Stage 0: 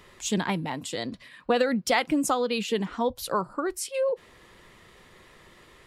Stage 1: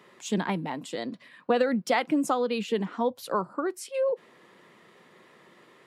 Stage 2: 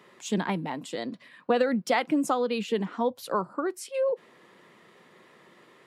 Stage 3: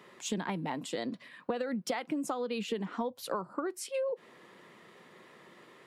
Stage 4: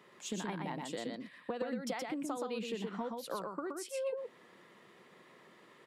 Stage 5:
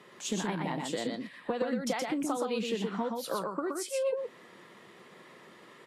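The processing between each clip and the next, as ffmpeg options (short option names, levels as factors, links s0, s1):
-af "highpass=f=160:w=0.5412,highpass=f=160:w=1.3066,highshelf=f=2700:g=-8.5"
-af anull
-af "acompressor=threshold=0.0316:ratio=10"
-af "aecho=1:1:122:0.668,volume=0.531"
-af "volume=2.11" -ar 48000 -c:a libvorbis -b:a 32k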